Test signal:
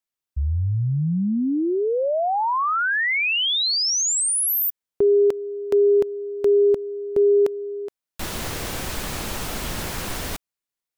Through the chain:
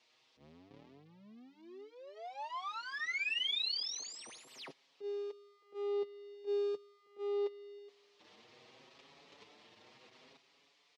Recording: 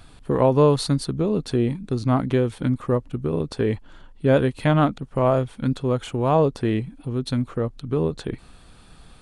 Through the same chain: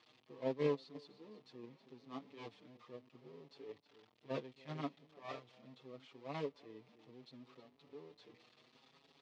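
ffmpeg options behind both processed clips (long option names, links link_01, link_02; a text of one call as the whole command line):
ffmpeg -i in.wav -filter_complex "[0:a]aeval=exprs='val(0)+0.5*0.1*sgn(val(0))':channel_layout=same,equalizer=frequency=260:width=0.57:gain=-6.5,asplit=2[link_01][link_02];[link_02]acrusher=bits=3:mix=0:aa=0.5,volume=-7dB[link_03];[link_01][link_03]amix=inputs=2:normalize=0,aeval=exprs='(tanh(6.31*val(0)+0.4)-tanh(0.4))/6.31':channel_layout=same,aecho=1:1:318:0.224,agate=range=-40dB:threshold=-14dB:ratio=16:release=429:detection=peak,highpass=frequency=150:width=0.5412,highpass=frequency=150:width=1.3066,equalizer=frequency=180:width_type=q:width=4:gain=-6,equalizer=frequency=270:width_type=q:width=4:gain=5,equalizer=frequency=430:width_type=q:width=4:gain=6,equalizer=frequency=1500:width_type=q:width=4:gain=-10,lowpass=frequency=4700:width=0.5412,lowpass=frequency=4700:width=1.3066,asplit=2[link_04][link_05];[link_05]adelay=6.1,afreqshift=0.71[link_06];[link_04][link_06]amix=inputs=2:normalize=1,volume=8dB" out.wav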